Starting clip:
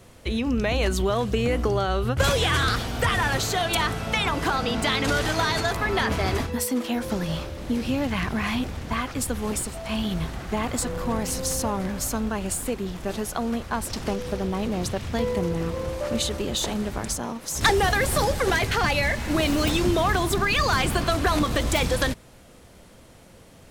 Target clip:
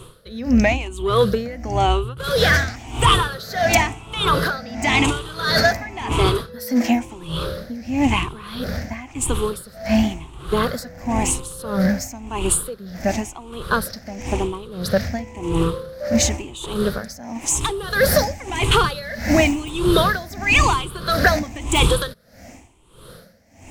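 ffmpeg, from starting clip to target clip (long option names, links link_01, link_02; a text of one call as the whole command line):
ffmpeg -i in.wav -af "afftfilt=real='re*pow(10,15/40*sin(2*PI*(0.65*log(max(b,1)*sr/1024/100)/log(2)-(0.96)*(pts-256)/sr)))':imag='im*pow(10,15/40*sin(2*PI*(0.65*log(max(b,1)*sr/1024/100)/log(2)-(0.96)*(pts-256)/sr)))':win_size=1024:overlap=0.75,acontrast=84,aeval=exprs='val(0)*pow(10,-18*(0.5-0.5*cos(2*PI*1.6*n/s))/20)':channel_layout=same" out.wav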